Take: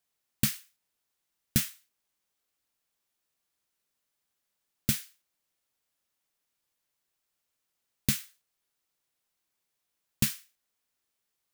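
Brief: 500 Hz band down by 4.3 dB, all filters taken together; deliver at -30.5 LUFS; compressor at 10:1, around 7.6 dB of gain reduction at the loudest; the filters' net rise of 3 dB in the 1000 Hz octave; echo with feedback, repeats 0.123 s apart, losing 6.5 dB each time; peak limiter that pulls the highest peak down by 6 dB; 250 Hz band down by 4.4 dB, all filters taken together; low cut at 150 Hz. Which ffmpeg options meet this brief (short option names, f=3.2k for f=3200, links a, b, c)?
-af "highpass=150,equalizer=f=250:t=o:g=-3.5,equalizer=f=500:t=o:g=-5.5,equalizer=f=1k:t=o:g=5.5,acompressor=threshold=-30dB:ratio=10,alimiter=limit=-18.5dB:level=0:latency=1,aecho=1:1:123|246|369|492|615|738:0.473|0.222|0.105|0.0491|0.0231|0.0109,volume=11dB"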